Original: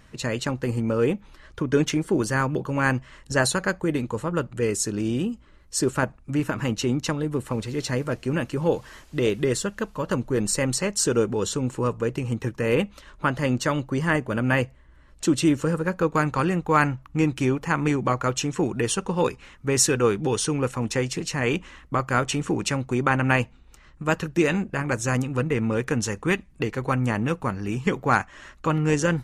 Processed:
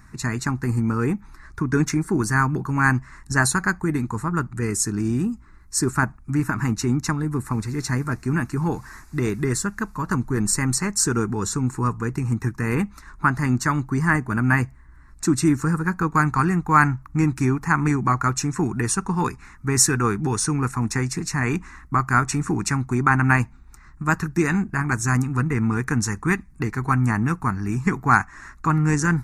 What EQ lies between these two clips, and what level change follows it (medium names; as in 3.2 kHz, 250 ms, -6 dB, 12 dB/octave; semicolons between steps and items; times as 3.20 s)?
static phaser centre 1.3 kHz, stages 4; +5.5 dB